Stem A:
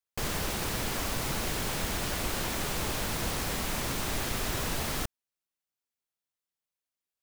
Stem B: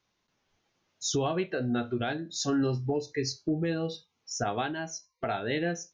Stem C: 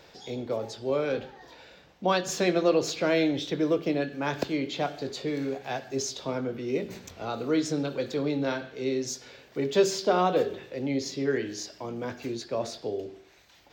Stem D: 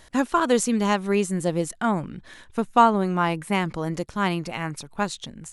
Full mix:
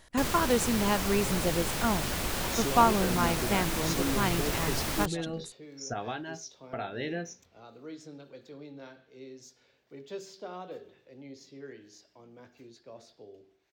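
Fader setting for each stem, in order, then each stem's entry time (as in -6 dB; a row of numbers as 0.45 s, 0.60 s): 0.0 dB, -5.0 dB, -18.0 dB, -6.0 dB; 0.00 s, 1.50 s, 0.35 s, 0.00 s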